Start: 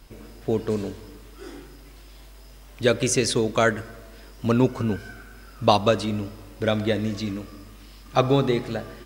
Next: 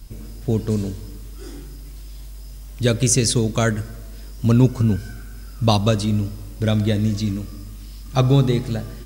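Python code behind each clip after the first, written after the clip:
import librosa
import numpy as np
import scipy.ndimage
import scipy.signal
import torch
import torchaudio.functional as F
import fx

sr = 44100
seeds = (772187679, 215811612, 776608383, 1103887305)

y = fx.bass_treble(x, sr, bass_db=14, treble_db=11)
y = F.gain(torch.from_numpy(y), -3.0).numpy()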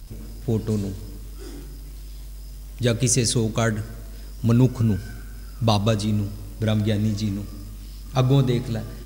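y = fx.law_mismatch(x, sr, coded='mu')
y = F.gain(torch.from_numpy(y), -3.0).numpy()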